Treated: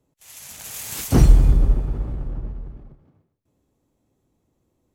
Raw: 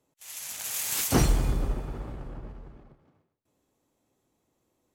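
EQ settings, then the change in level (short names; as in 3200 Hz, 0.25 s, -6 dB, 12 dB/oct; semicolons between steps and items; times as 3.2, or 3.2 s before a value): low shelf 120 Hz +7 dB; low shelf 480 Hz +8.5 dB; -2.0 dB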